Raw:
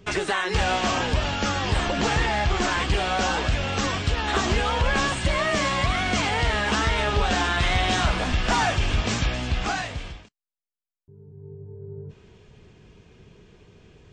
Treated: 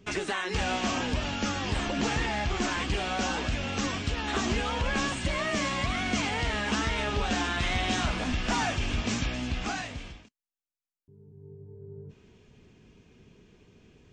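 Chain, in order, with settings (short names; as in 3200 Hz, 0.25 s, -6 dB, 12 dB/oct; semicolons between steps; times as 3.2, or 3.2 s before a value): fifteen-band EQ 250 Hz +8 dB, 2500 Hz +3 dB, 6300 Hz +4 dB; gain -7.5 dB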